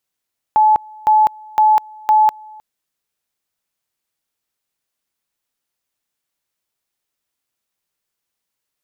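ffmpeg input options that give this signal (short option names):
-f lavfi -i "aevalsrc='pow(10,(-8-26.5*gte(mod(t,0.51),0.2))/20)*sin(2*PI*860*t)':d=2.04:s=44100"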